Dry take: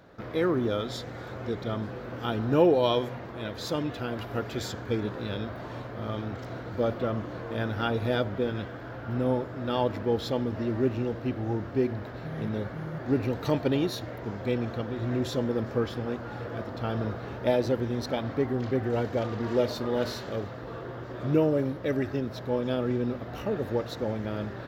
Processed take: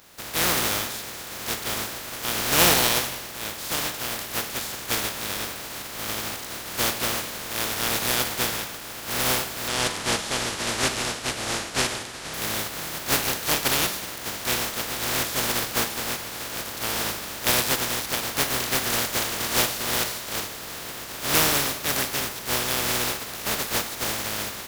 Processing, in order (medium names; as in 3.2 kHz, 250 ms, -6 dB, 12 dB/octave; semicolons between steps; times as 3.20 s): spectral contrast reduction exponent 0.18; 9.68–12.34 s: low-pass 9.9 kHz 24 dB/octave; Schroeder reverb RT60 0.93 s, DRR 9.5 dB; trim +2.5 dB